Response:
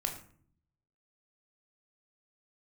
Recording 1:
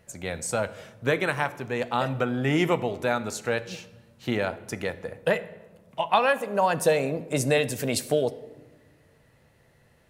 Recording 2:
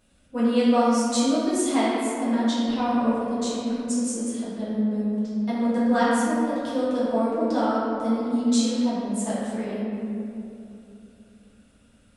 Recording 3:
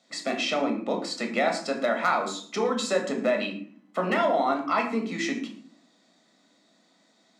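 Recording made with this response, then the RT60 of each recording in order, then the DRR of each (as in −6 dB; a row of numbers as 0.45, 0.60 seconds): 3; non-exponential decay, 2.8 s, 0.55 s; 12.0, −11.0, 3.0 decibels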